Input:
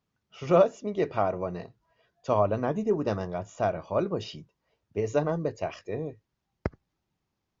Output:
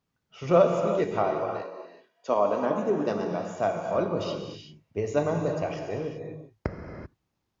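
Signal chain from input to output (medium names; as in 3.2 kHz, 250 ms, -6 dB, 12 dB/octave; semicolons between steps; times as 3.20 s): 1.22–3.96 s: high-pass 330 Hz -> 110 Hz 24 dB/octave; gated-style reverb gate 410 ms flat, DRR 2.5 dB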